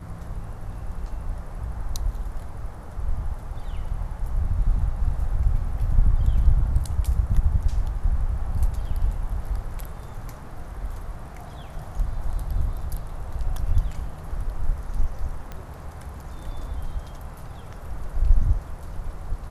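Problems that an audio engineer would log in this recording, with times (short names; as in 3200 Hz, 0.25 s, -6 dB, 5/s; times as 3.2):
15.52 pop -21 dBFS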